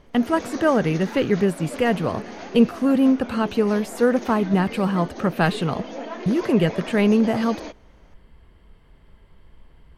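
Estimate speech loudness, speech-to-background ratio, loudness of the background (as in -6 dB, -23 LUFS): -21.5 LUFS, 13.5 dB, -35.0 LUFS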